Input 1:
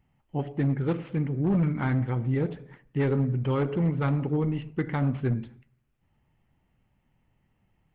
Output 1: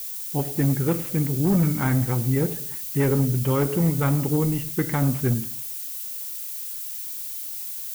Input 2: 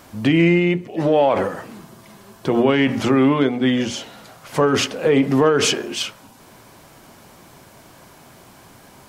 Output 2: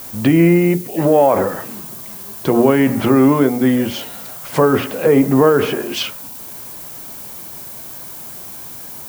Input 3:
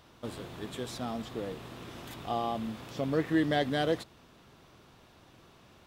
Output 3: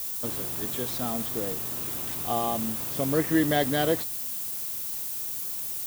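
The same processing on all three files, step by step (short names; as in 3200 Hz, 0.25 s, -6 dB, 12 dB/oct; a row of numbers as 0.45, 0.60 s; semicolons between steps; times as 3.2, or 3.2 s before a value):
treble ducked by the level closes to 1600 Hz, closed at -15.5 dBFS; added noise violet -37 dBFS; gain +4 dB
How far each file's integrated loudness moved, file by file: +4.0, +3.5, +6.5 LU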